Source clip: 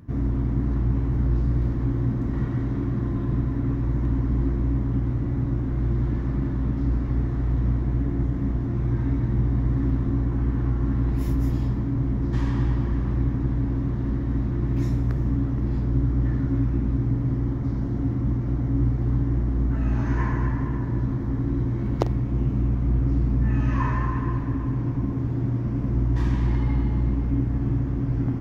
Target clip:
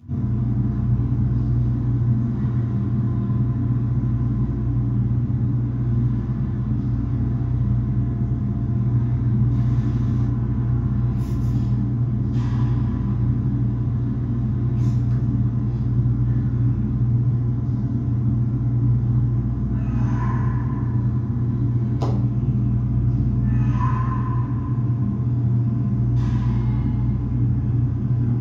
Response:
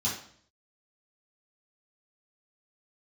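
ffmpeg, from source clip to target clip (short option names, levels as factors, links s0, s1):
-filter_complex "[0:a]asettb=1/sr,asplit=3[s0][s1][s2];[s0]atrim=end=9.514[s3];[s1]atrim=start=9.51:end=10.27,asetpts=PTS-STARTPTS,afade=t=in:d=0.004:c=qsin,afade=t=out:st=0.756:d=0.004:c=qsin,highshelf=f=2300:g=10.5[s4];[s2]atrim=start=10.266[s5];[s3][s4]acrossfade=d=0.004:c1=hsin:c2=qsin[s6];[s6][s5]acrossfade=d=0.004:c1=qsin:c2=hsin[s7];[1:a]atrim=start_sample=2205[s8];[s7][s8]afir=irnorm=-1:irlink=0,volume=0.376"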